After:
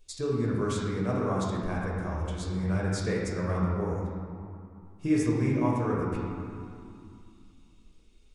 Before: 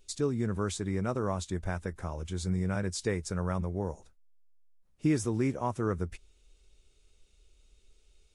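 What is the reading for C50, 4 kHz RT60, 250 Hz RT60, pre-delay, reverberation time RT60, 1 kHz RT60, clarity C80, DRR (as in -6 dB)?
-1.0 dB, 1.5 s, 3.2 s, 6 ms, 2.4 s, 2.6 s, 1.0 dB, -5.0 dB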